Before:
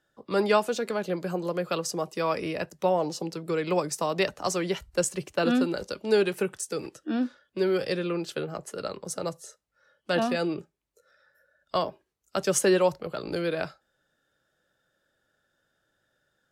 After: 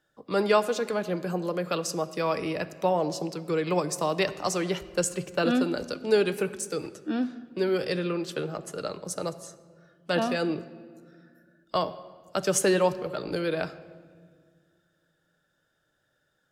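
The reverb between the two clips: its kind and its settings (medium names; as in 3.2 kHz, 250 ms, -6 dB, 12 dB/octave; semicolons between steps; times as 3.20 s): simulated room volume 2700 m³, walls mixed, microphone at 0.48 m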